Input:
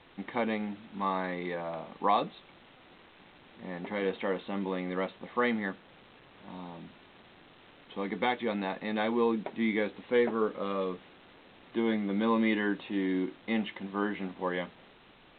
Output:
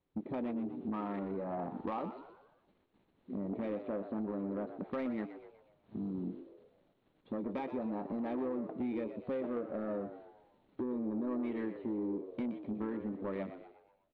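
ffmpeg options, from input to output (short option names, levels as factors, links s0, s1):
-filter_complex "[0:a]agate=range=0.158:threshold=0.002:ratio=16:detection=peak,afwtdn=0.0141,tiltshelf=f=660:g=8,acompressor=threshold=0.0126:ratio=6,asoftclip=type=tanh:threshold=0.02,asplit=2[s0][s1];[s1]asplit=5[s2][s3][s4][s5][s6];[s2]adelay=133,afreqshift=71,volume=0.282[s7];[s3]adelay=266,afreqshift=142,volume=0.124[s8];[s4]adelay=399,afreqshift=213,volume=0.0543[s9];[s5]adelay=532,afreqshift=284,volume=0.024[s10];[s6]adelay=665,afreqshift=355,volume=0.0106[s11];[s7][s8][s9][s10][s11]amix=inputs=5:normalize=0[s12];[s0][s12]amix=inputs=2:normalize=0,asetrate=48000,aresample=44100,volume=1.68"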